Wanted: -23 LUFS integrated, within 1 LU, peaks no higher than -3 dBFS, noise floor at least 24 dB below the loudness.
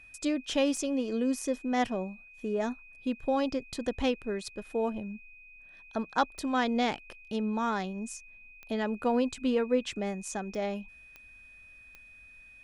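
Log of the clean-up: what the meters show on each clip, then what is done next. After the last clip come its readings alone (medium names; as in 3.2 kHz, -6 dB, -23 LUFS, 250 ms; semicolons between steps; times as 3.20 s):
clicks found 6; steady tone 2.5 kHz; tone level -51 dBFS; loudness -32.0 LUFS; peak level -12.5 dBFS; loudness target -23.0 LUFS
-> de-click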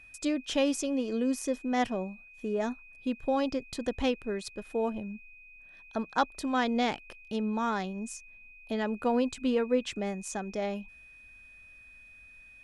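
clicks found 0; steady tone 2.5 kHz; tone level -51 dBFS
-> band-stop 2.5 kHz, Q 30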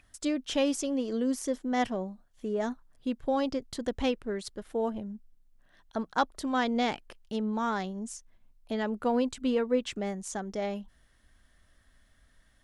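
steady tone not found; loudness -32.0 LUFS; peak level -12.5 dBFS; loudness target -23.0 LUFS
-> trim +9 dB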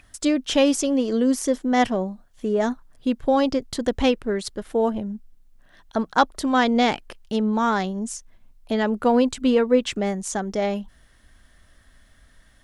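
loudness -23.0 LUFS; peak level -3.5 dBFS; noise floor -56 dBFS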